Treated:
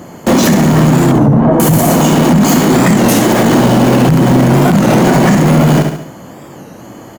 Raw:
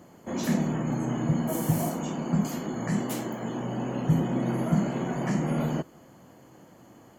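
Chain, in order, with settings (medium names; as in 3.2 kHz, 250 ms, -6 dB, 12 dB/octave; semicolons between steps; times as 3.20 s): in parallel at -6 dB: companded quantiser 2-bit; 1.13–1.60 s: on the sum: Chebyshev low-pass 990 Hz, order 2; on a send: feedback delay 70 ms, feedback 47%, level -10 dB; on the sum: loudness maximiser +21 dB; warped record 33 1/3 rpm, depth 160 cents; trim -1 dB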